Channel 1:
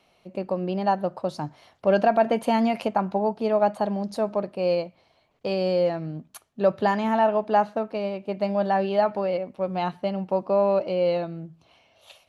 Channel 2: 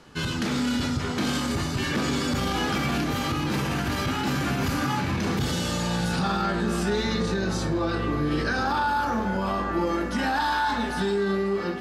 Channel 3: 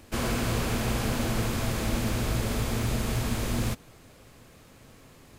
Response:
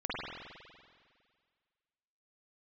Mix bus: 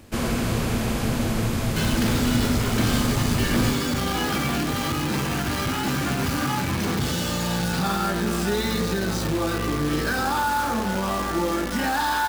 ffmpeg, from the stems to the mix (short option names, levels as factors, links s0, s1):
-filter_complex "[1:a]acrusher=bits=6:dc=4:mix=0:aa=0.000001,adelay=1600,volume=1.12[s0];[2:a]equalizer=f=150:w=0.67:g=5,acrusher=bits=11:mix=0:aa=0.000001,bandreject=f=60:t=h:w=6,bandreject=f=120:t=h:w=6,volume=1.26[s1];[s0][s1]amix=inputs=2:normalize=0"